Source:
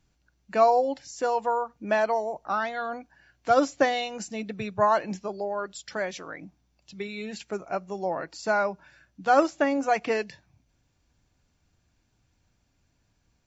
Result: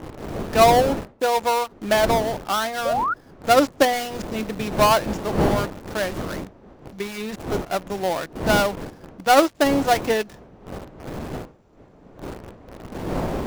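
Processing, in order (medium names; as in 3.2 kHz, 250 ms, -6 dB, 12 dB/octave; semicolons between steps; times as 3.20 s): dead-time distortion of 0.17 ms; wind noise 470 Hz -36 dBFS; in parallel at -6 dB: word length cut 6-bit, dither none; on the sum: painted sound rise, 2.85–3.14 s, 510–1500 Hz -24 dBFS; trim +2 dB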